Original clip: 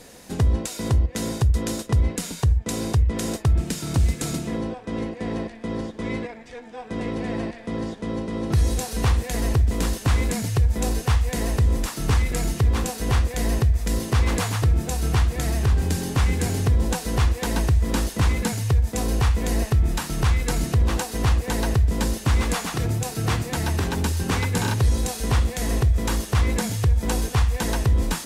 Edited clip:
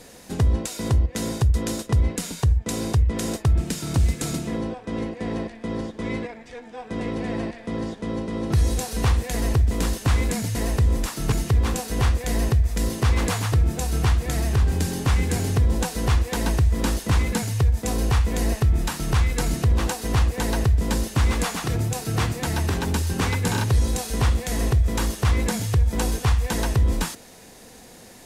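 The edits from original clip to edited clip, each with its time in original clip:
10.55–11.35 cut
12.12–12.42 cut

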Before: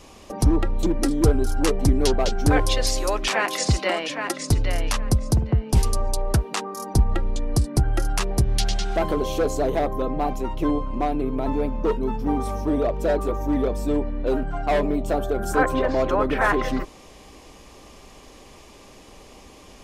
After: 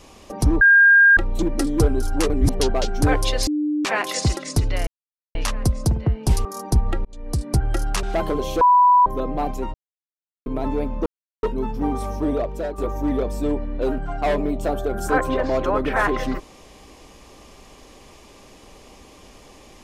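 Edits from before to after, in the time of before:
0.61 add tone 1610 Hz -8.5 dBFS 0.56 s
1.74–2.04 reverse
2.91–3.29 bleep 299 Hz -19 dBFS
3.81–4.31 cut
4.81 insert silence 0.48 s
5.91–6.68 cut
7.28–7.74 fade in
8.26–8.85 cut
9.43–9.88 bleep 987 Hz -10 dBFS
10.56–11.28 mute
11.88 insert silence 0.37 s
12.77–13.23 fade out linear, to -10 dB

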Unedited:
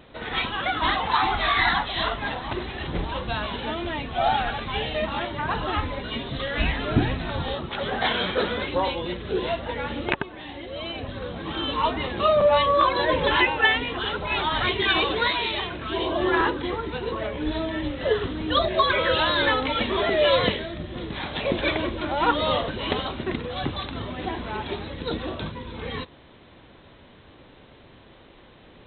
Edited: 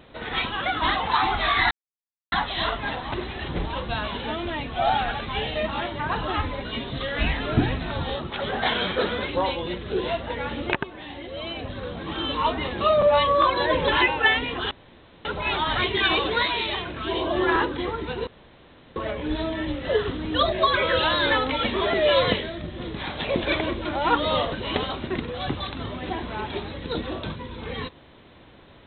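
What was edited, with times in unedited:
1.71 insert silence 0.61 s
14.1 insert room tone 0.54 s
17.12 insert room tone 0.69 s

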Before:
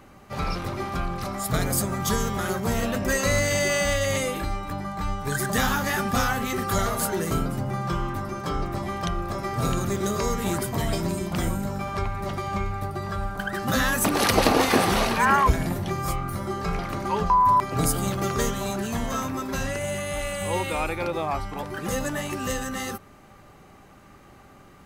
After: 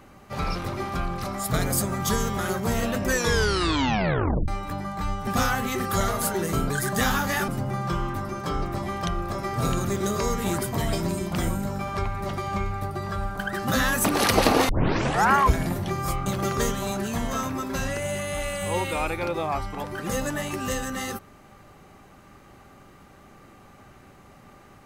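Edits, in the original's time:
3.07 tape stop 1.41 s
5.27–6.05 move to 7.48
14.69 tape start 0.63 s
16.26–18.05 cut

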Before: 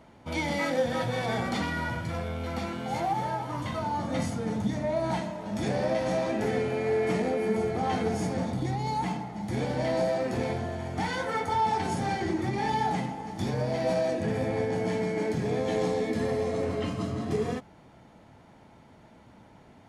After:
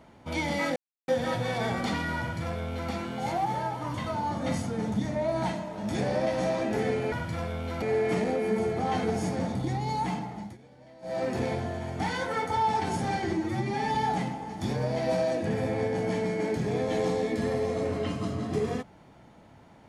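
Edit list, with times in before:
0.76 insert silence 0.32 s
1.88–2.58 copy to 6.8
9.34–10.21 dip -24 dB, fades 0.21 s
12.31–12.72 stretch 1.5×

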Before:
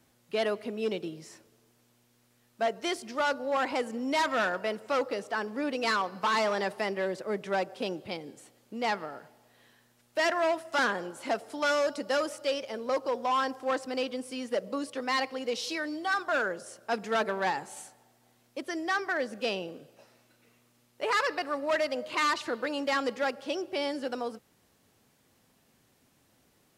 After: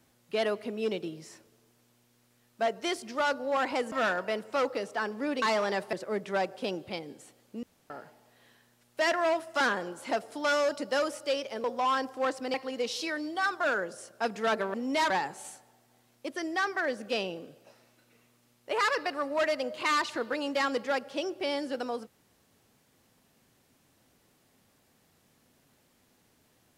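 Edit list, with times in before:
3.92–4.28 move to 17.42
5.78–6.31 cut
6.82–7.11 cut
8.81–9.08 room tone
12.82–13.1 cut
14–15.22 cut

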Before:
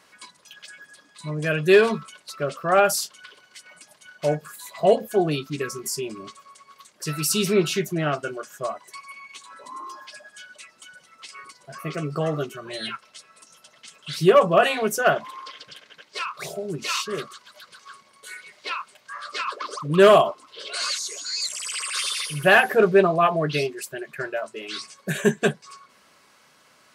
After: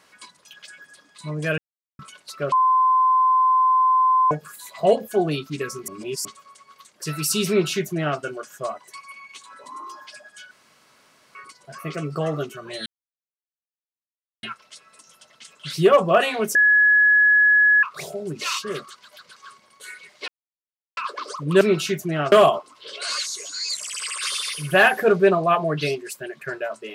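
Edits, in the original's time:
1.58–1.99 mute
2.52–4.31 bleep 1030 Hz -14 dBFS
5.88–6.25 reverse
7.48–8.19 copy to 20.04
10.51–11.35 room tone
12.86 insert silence 1.57 s
14.98–16.26 bleep 1690 Hz -12 dBFS
18.71–19.4 mute

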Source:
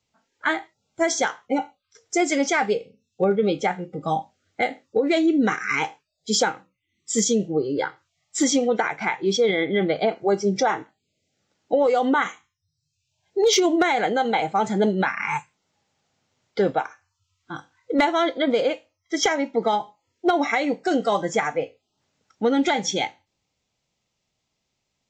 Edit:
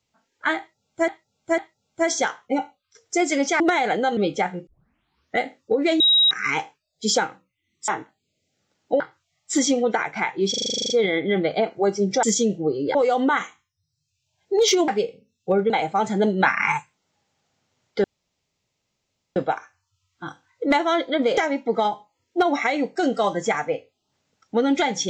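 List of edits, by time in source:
0.58–1.08 loop, 3 plays
2.6–3.42 swap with 13.73–14.3
3.92 tape start 0.73 s
5.25–5.56 bleep 3820 Hz -13 dBFS
7.13–7.85 swap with 10.68–11.8
9.35 stutter 0.04 s, 11 plays
15.03–15.32 gain +5.5 dB
16.64 insert room tone 1.32 s
18.65–19.25 cut

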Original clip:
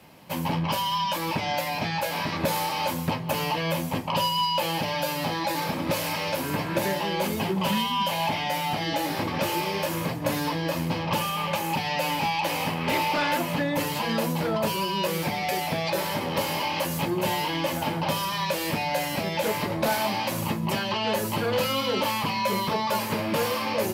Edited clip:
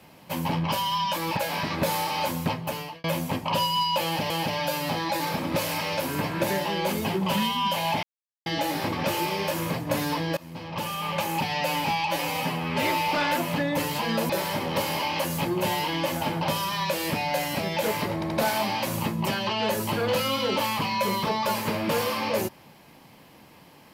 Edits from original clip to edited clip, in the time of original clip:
1.37–1.99 cut
3.14–3.66 fade out
4.65–4.92 loop, 2 plays
8.38–8.81 mute
10.72–11.57 fade in, from -21.5 dB
12.4–13.09 stretch 1.5×
14.3–15.9 cut
19.75 stutter 0.08 s, 3 plays

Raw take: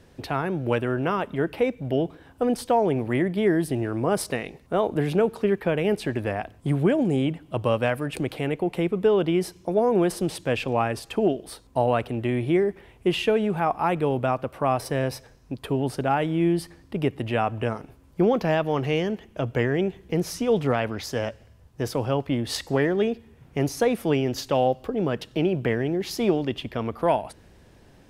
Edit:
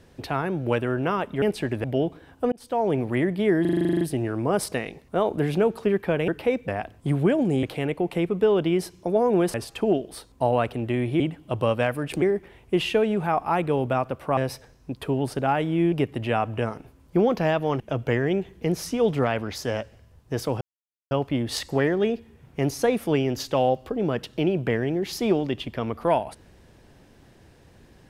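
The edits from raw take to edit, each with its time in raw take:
1.42–1.82 swap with 5.86–6.28
2.5–2.9 fade in
3.59 stutter 0.04 s, 11 plays
7.23–8.25 move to 12.55
10.16–10.89 cut
14.7–14.99 cut
16.54–16.96 cut
18.84–19.28 cut
22.09 insert silence 0.50 s

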